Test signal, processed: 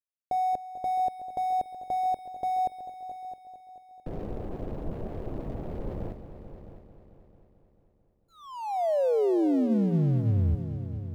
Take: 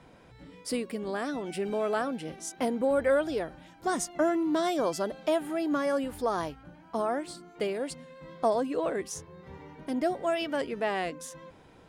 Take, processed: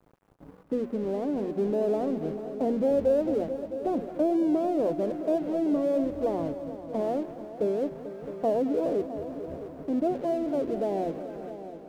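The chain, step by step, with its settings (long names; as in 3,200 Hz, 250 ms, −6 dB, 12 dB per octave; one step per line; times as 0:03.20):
inverse Chebyshev low-pass filter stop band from 2,900 Hz, stop band 70 dB
mains-hum notches 60/120/180/240 Hz
in parallel at +1 dB: brickwall limiter −29 dBFS
on the sum: dead-zone distortion −47 dBFS
bit-depth reduction 12 bits, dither none
on a send: echo machine with several playback heads 221 ms, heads all three, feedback 45%, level −15 dB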